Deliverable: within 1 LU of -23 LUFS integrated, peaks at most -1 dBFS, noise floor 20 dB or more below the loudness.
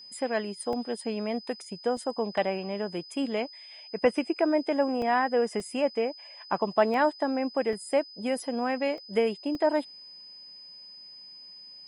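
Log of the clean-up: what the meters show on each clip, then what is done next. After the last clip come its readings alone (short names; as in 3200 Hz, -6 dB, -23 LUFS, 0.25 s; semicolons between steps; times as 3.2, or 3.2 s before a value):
dropouts 8; longest dropout 1.6 ms; steady tone 5000 Hz; tone level -45 dBFS; loudness -29.0 LUFS; peak -9.5 dBFS; loudness target -23.0 LUFS
-> interpolate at 0.73/1.97/5.02/5.6/6.94/7.73/8.98/9.55, 1.6 ms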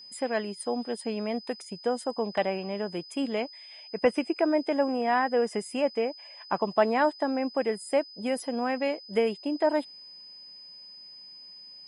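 dropouts 0; steady tone 5000 Hz; tone level -45 dBFS
-> notch 5000 Hz, Q 30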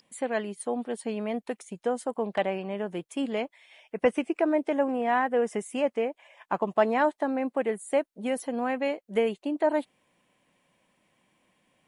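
steady tone none; loudness -29.0 LUFS; peak -9.5 dBFS; loudness target -23.0 LUFS
-> gain +6 dB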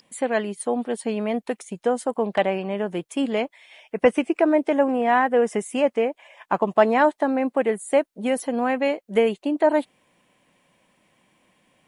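loudness -23.0 LUFS; peak -3.5 dBFS; noise floor -71 dBFS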